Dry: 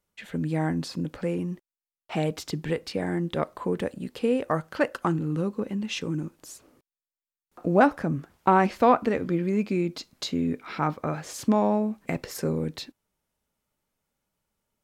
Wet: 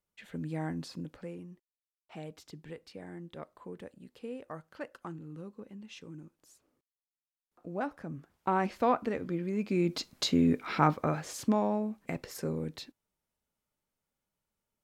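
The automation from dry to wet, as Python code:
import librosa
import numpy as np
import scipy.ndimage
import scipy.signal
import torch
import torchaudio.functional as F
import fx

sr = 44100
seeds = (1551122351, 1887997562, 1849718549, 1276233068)

y = fx.gain(x, sr, db=fx.line((0.94, -9.0), (1.48, -17.0), (7.72, -17.0), (8.69, -8.0), (9.55, -8.0), (9.97, 1.5), (10.83, 1.5), (11.68, -7.0)))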